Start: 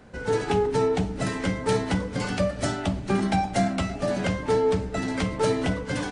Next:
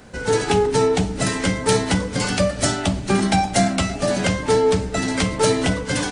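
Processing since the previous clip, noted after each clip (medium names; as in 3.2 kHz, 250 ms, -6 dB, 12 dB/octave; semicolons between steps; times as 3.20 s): treble shelf 3.8 kHz +10.5 dB; trim +5 dB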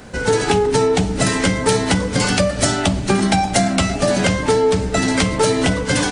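compression, threshold -18 dBFS, peak gain reduction 6 dB; trim +6 dB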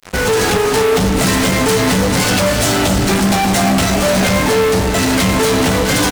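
fuzz box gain 33 dB, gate -32 dBFS; doubling 20 ms -10.5 dB; on a send: delay 263 ms -8 dB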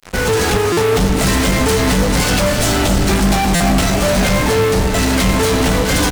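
octave divider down 2 oct, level -1 dB; buffer glitch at 0.72/3.55 s, samples 256, times 8; trim -1.5 dB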